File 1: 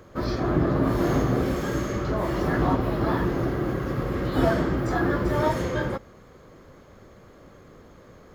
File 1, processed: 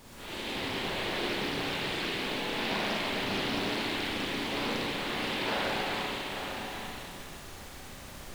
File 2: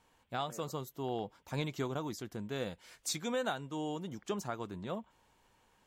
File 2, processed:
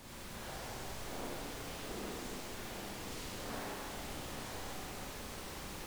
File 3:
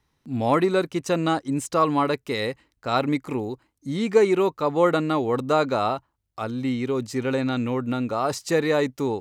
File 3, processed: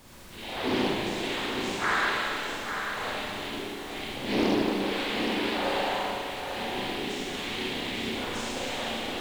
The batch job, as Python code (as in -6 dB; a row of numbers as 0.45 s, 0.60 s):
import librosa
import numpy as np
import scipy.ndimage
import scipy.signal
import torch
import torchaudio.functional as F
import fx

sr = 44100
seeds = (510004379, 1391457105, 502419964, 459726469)

y = fx.rattle_buzz(x, sr, strikes_db=-32.0, level_db=-13.0)
y = fx.spec_gate(y, sr, threshold_db=-25, keep='strong')
y = scipy.signal.sosfilt(scipy.signal.butter(2, 270.0, 'highpass', fs=sr, output='sos'), y)
y = fx.transient(y, sr, attack_db=-5, sustain_db=9)
y = fx.resonator_bank(y, sr, root=47, chord='fifth', decay_s=0.49)
y = fx.noise_vocoder(y, sr, seeds[0], bands=6)
y = fx.dmg_noise_colour(y, sr, seeds[1], colour='pink', level_db=-52.0)
y = y + 10.0 ** (-7.0 / 20.0) * np.pad(y, (int(845 * sr / 1000.0), 0))[:len(y)]
y = fx.rev_schroeder(y, sr, rt60_s=2.6, comb_ms=31, drr_db=-7.0)
y = fx.doppler_dist(y, sr, depth_ms=0.4)
y = y * 10.0 ** (-1.5 / 20.0)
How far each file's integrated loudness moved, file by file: -7.0 LU, -5.0 LU, -6.0 LU